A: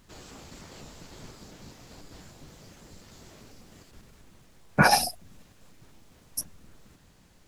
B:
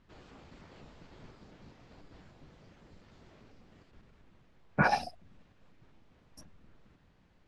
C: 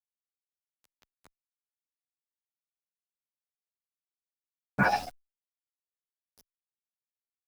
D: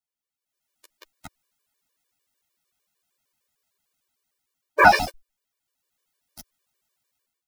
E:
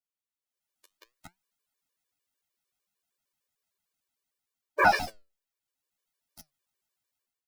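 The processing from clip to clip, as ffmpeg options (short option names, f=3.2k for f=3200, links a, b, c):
-af "lowpass=3k,volume=-6.5dB"
-filter_complex "[0:a]aeval=exprs='val(0)*gte(abs(val(0)),0.00794)':c=same,asplit=2[a][b];[b]adelay=10.2,afreqshift=0.33[c];[a][c]amix=inputs=2:normalize=1,volume=4dB"
-af "dynaudnorm=f=400:g=3:m=16.5dB,afftfilt=real='re*gt(sin(2*PI*6.6*pts/sr)*(1-2*mod(floor(b*sr/1024/310),2)),0)':imag='im*gt(sin(2*PI*6.6*pts/sr)*(1-2*mod(floor(b*sr/1024/310),2)),0)':win_size=1024:overlap=0.75,volume=5.5dB"
-af "flanger=delay=4.3:depth=6.6:regen=78:speed=0.65:shape=sinusoidal,volume=-3dB"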